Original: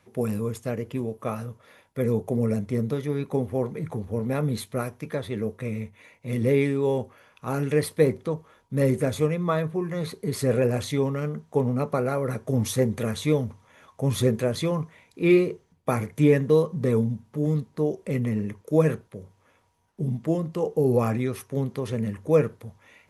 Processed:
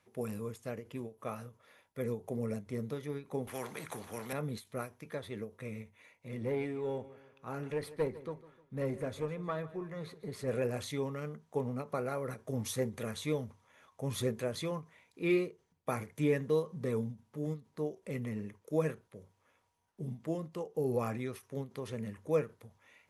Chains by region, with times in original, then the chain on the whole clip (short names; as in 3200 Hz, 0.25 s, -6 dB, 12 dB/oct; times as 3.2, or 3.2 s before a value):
3.47–4.33 HPF 140 Hz + spectral compressor 2:1
6.28–10.48 high shelf 4700 Hz -10 dB + tube stage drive 11 dB, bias 0.4 + feedback echo 0.153 s, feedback 42%, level -17 dB
whole clip: low shelf 410 Hz -5.5 dB; ending taper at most 240 dB/s; gain -8 dB